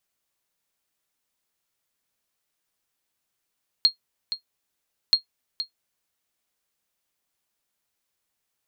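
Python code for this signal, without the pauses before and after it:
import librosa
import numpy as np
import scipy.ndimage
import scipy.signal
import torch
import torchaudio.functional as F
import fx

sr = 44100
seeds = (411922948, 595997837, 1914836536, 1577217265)

y = fx.sonar_ping(sr, hz=4250.0, decay_s=0.11, every_s=1.28, pings=2, echo_s=0.47, echo_db=-11.5, level_db=-8.0)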